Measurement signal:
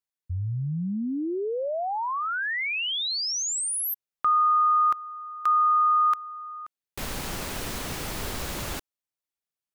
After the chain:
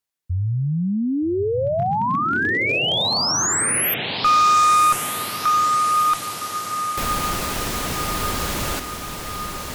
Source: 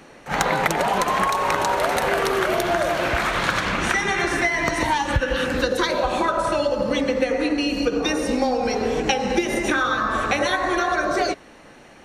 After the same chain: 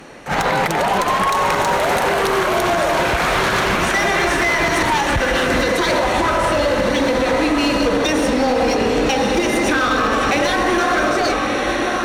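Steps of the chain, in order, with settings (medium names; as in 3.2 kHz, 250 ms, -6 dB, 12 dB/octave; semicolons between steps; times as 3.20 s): echo that smears into a reverb 1249 ms, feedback 60%, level -6.5 dB; peak limiter -13.5 dBFS; one-sided clip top -22 dBFS; trim +7 dB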